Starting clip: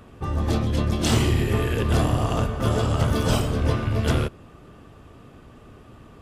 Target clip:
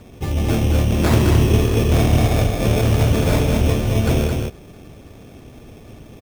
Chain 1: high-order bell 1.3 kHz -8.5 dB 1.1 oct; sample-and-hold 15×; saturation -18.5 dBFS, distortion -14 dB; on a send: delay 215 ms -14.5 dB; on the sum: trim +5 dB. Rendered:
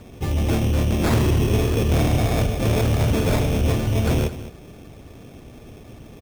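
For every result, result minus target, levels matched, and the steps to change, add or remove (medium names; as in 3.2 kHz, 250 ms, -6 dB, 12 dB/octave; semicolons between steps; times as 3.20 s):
saturation: distortion +10 dB; echo-to-direct -10 dB
change: saturation -11 dBFS, distortion -24 dB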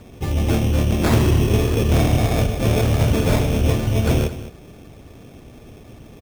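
echo-to-direct -10 dB
change: delay 215 ms -4.5 dB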